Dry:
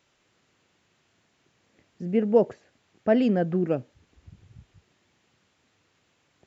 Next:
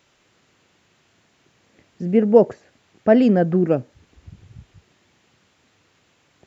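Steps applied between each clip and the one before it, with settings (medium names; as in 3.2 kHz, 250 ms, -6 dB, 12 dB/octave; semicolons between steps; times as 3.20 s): dynamic bell 3 kHz, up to -4 dB, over -53 dBFS, Q 1.4; trim +7 dB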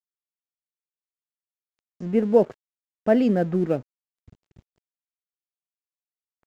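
crossover distortion -40.5 dBFS; trim -4.5 dB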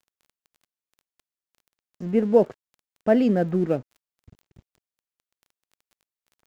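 crackle 13 per s -43 dBFS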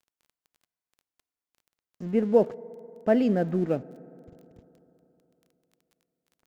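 FDN reverb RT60 3.5 s, high-frequency decay 0.25×, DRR 19.5 dB; trim -3 dB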